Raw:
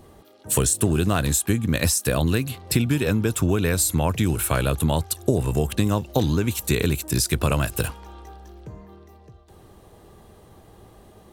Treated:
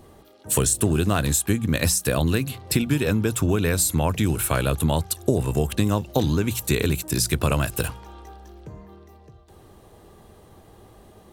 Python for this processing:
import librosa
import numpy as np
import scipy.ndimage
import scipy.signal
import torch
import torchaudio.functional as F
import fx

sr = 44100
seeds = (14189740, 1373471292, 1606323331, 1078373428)

y = fx.hum_notches(x, sr, base_hz=60, count=3)